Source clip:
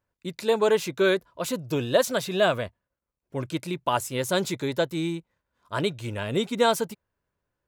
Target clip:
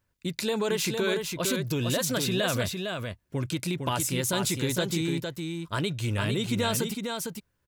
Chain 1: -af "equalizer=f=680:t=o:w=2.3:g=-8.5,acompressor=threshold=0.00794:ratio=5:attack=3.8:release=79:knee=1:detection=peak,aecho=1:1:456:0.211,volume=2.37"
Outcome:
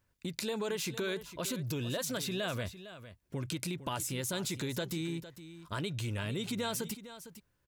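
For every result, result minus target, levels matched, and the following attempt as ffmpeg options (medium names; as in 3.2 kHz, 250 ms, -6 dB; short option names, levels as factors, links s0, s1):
compression: peak gain reduction +7.5 dB; echo-to-direct -8.5 dB
-af "equalizer=f=680:t=o:w=2.3:g=-8.5,acompressor=threshold=0.0237:ratio=5:attack=3.8:release=79:knee=1:detection=peak,aecho=1:1:456:0.211,volume=2.37"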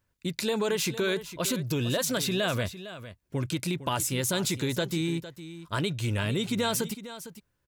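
echo-to-direct -8.5 dB
-af "equalizer=f=680:t=o:w=2.3:g=-8.5,acompressor=threshold=0.0237:ratio=5:attack=3.8:release=79:knee=1:detection=peak,aecho=1:1:456:0.562,volume=2.37"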